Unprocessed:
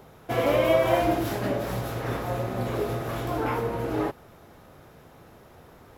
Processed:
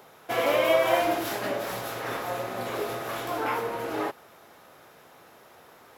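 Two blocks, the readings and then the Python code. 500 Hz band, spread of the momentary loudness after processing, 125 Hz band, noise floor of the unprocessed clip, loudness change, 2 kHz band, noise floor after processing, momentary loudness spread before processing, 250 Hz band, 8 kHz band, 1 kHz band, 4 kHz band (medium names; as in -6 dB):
-1.5 dB, 11 LU, -13.0 dB, -52 dBFS, -1.0 dB, +3.0 dB, -54 dBFS, 9 LU, -6.0 dB, +3.5 dB, +0.5 dB, +3.5 dB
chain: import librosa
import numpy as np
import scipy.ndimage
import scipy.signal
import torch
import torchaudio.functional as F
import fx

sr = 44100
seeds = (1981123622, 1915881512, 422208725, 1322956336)

y = fx.highpass(x, sr, hz=810.0, slope=6)
y = F.gain(torch.from_numpy(y), 3.5).numpy()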